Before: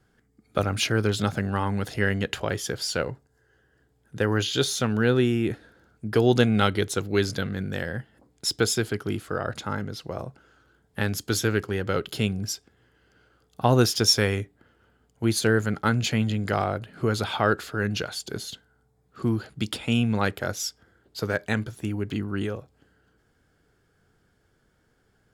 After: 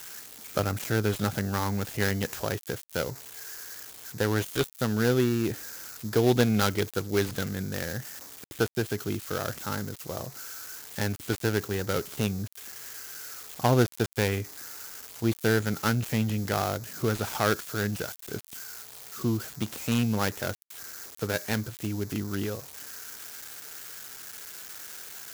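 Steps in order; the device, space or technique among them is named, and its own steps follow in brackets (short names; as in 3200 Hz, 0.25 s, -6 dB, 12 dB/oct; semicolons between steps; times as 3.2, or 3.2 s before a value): budget class-D amplifier (switching dead time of 0.15 ms; switching spikes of -22 dBFS); gain -2.5 dB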